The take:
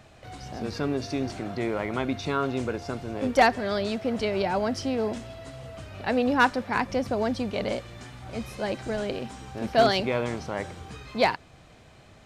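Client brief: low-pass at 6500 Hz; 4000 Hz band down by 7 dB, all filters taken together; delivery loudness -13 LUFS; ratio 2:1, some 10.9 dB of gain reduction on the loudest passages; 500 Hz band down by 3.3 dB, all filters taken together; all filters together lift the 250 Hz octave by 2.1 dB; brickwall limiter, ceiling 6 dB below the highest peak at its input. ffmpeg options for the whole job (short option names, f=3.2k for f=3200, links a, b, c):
-af "lowpass=6.5k,equalizer=f=250:t=o:g=3.5,equalizer=f=500:t=o:g=-5,equalizer=f=4k:t=o:g=-8.5,acompressor=threshold=-37dB:ratio=2,volume=24.5dB,alimiter=limit=-2.5dB:level=0:latency=1"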